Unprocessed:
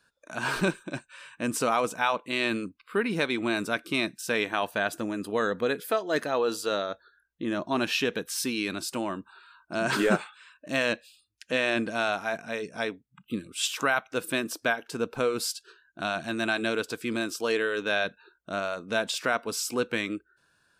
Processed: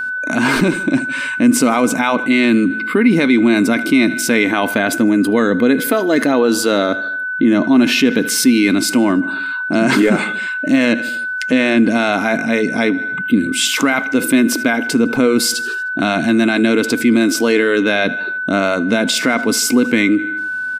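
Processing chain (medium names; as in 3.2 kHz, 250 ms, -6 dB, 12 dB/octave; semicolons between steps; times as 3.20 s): peak limiter -18.5 dBFS, peak gain reduction 8 dB; small resonant body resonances 260/2100 Hz, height 16 dB, ringing for 45 ms; whistle 1.5 kHz -39 dBFS; feedback delay 77 ms, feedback 55%, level -22.5 dB; level flattener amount 50%; trim +5.5 dB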